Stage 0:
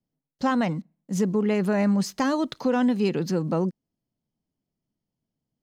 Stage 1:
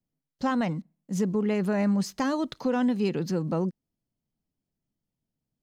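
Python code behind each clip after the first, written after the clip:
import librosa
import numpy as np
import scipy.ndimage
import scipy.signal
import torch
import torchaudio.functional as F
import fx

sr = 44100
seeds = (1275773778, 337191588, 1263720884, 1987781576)

y = fx.low_shelf(x, sr, hz=80.0, db=7.5)
y = y * 10.0 ** (-3.5 / 20.0)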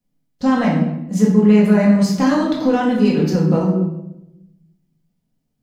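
y = fx.room_shoebox(x, sr, seeds[0], volume_m3=310.0, walls='mixed', distance_m=1.9)
y = y * 10.0 ** (4.0 / 20.0)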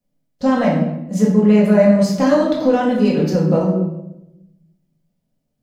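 y = fx.peak_eq(x, sr, hz=580.0, db=10.5, octaves=0.33)
y = y * 10.0 ** (-1.0 / 20.0)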